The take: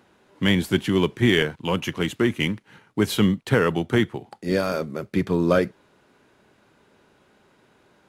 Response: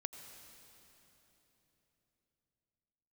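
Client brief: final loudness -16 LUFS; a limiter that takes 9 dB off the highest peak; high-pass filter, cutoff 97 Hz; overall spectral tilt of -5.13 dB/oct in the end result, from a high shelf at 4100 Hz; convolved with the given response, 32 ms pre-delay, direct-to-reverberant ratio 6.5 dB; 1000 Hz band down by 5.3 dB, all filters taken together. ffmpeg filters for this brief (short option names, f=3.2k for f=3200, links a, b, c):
-filter_complex "[0:a]highpass=97,equalizer=f=1k:t=o:g=-8,highshelf=f=4.1k:g=6,alimiter=limit=-14.5dB:level=0:latency=1,asplit=2[a][b];[1:a]atrim=start_sample=2205,adelay=32[c];[b][c]afir=irnorm=-1:irlink=0,volume=-4.5dB[d];[a][d]amix=inputs=2:normalize=0,volume=10dB"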